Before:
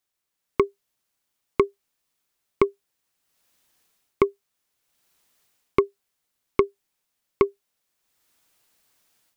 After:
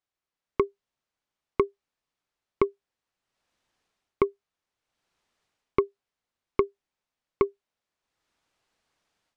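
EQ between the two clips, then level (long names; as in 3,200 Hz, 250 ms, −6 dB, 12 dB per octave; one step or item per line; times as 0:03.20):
high-frequency loss of the air 84 metres
low-shelf EQ 130 Hz +4.5 dB
parametric band 790 Hz +3.5 dB 2.3 octaves
−6.0 dB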